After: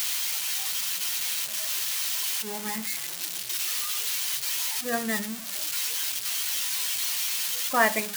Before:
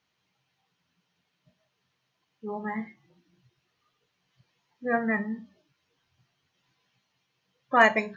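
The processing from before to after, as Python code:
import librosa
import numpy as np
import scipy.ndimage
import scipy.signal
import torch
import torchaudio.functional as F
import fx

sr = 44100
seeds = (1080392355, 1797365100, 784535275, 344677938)

y = x + 0.5 * 10.0 ** (-15.5 / 20.0) * np.diff(np.sign(x), prepend=np.sign(x[:1]))
y = y * 10.0 ** (-3.0 / 20.0)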